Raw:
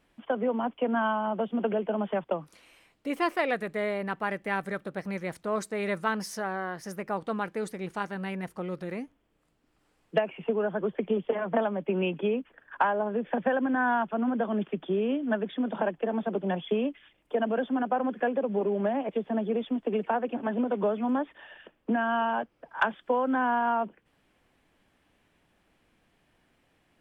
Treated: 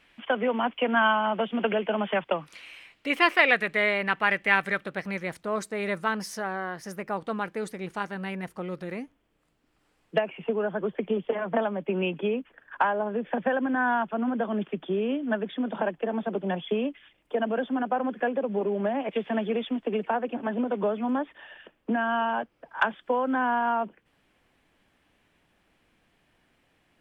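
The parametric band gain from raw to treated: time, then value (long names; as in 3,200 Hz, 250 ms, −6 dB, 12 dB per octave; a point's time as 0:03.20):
parametric band 2,500 Hz 2 octaves
0:04.67 +14 dB
0:05.44 +2.5 dB
0:18.93 +2.5 dB
0:19.22 +14.5 dB
0:20.07 +2.5 dB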